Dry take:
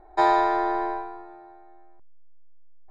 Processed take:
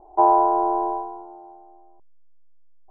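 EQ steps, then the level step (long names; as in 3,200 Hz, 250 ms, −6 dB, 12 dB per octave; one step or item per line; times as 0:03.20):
elliptic low-pass filter 970 Hz, stop band 70 dB
low-shelf EQ 280 Hz −9 dB
+6.0 dB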